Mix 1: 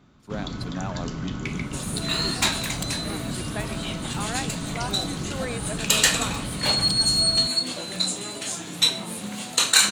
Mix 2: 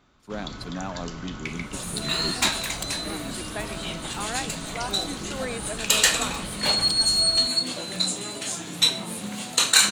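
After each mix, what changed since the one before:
first sound: add bell 160 Hz -11 dB 2.2 oct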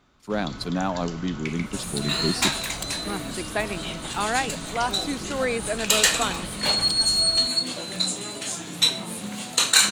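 speech +7.5 dB

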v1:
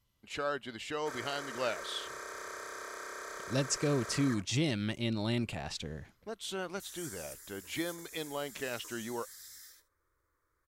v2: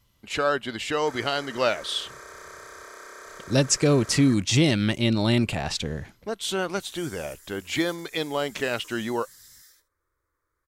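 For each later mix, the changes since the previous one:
speech +11.0 dB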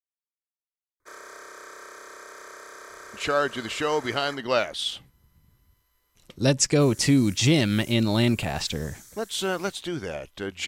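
speech: entry +2.90 s

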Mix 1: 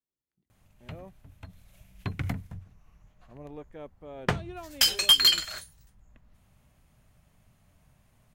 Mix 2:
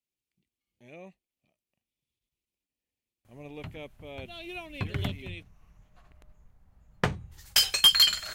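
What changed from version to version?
speech: add resonant high shelf 1900 Hz +8.5 dB, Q 3; background: entry +2.75 s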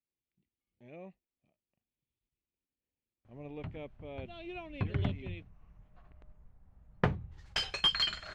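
master: add tape spacing loss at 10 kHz 29 dB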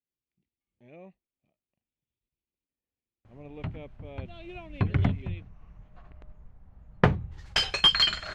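background +8.0 dB

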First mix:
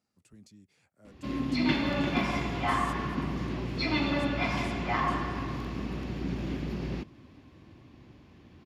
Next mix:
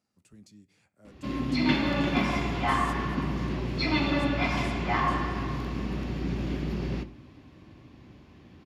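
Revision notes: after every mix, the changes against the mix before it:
reverb: on, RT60 0.50 s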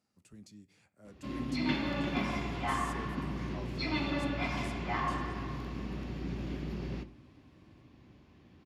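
background -7.0 dB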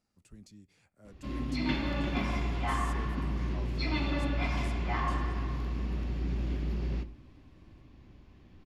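speech: send -6.0 dB; master: remove HPF 100 Hz 12 dB/oct

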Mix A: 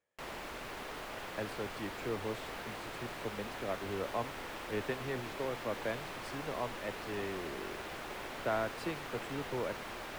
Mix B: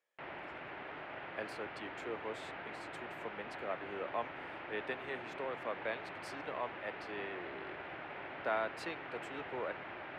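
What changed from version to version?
speech: add weighting filter A; background: add speaker cabinet 120–2600 Hz, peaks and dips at 220 Hz -9 dB, 470 Hz -6 dB, 1100 Hz -5 dB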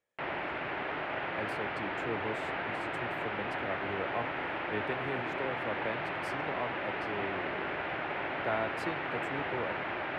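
speech: remove weighting filter A; background +10.5 dB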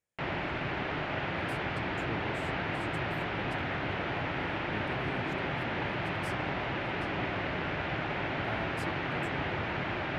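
speech -9.5 dB; master: add tone controls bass +13 dB, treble +14 dB

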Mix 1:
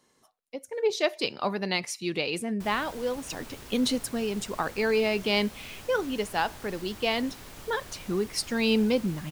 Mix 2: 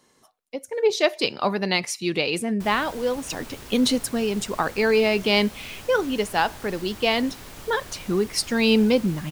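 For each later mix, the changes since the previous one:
speech +5.5 dB; background +4.0 dB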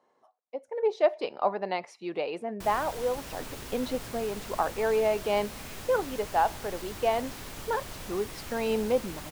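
speech: add band-pass 720 Hz, Q 1.7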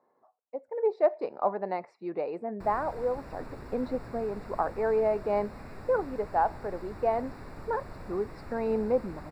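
master: add running mean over 14 samples

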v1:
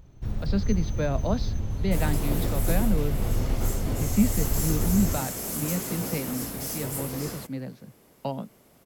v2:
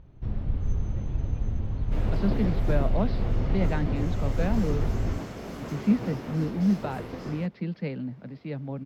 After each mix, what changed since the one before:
speech: entry +1.70 s; master: add air absorption 250 m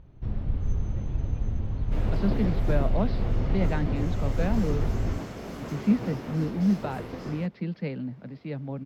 none

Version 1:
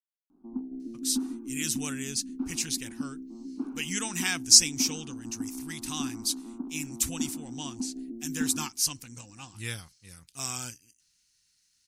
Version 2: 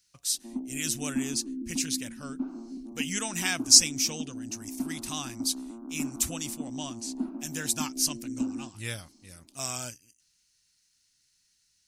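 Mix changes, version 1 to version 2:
speech: entry -0.80 s; master: add bell 610 Hz +12.5 dB 0.3 oct

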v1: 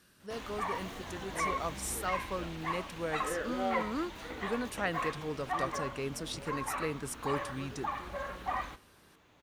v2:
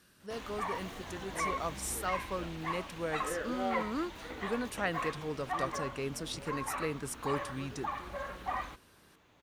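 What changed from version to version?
reverb: off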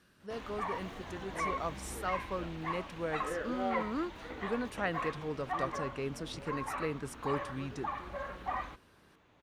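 master: add high shelf 5000 Hz -11 dB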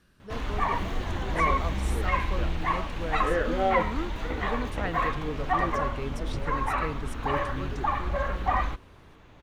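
background +10.0 dB; master: remove HPF 170 Hz 6 dB/oct

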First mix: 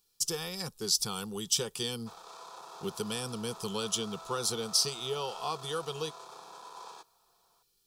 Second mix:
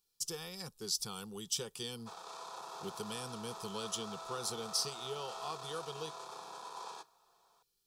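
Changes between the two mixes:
speech -7.5 dB; reverb: on, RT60 0.30 s

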